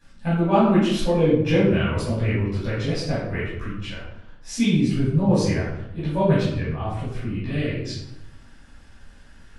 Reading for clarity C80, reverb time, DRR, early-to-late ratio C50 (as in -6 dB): 5.0 dB, 0.80 s, -12.5 dB, 0.0 dB